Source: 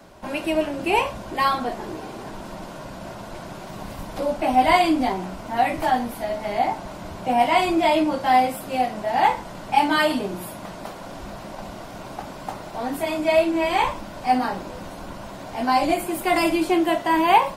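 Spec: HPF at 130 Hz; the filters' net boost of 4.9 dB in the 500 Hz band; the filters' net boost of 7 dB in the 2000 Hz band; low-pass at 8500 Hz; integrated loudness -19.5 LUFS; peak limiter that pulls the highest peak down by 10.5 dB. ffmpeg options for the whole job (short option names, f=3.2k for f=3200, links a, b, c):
-af "highpass=130,lowpass=8.5k,equalizer=f=500:t=o:g=6.5,equalizer=f=2k:t=o:g=8,volume=1.5dB,alimiter=limit=-9dB:level=0:latency=1"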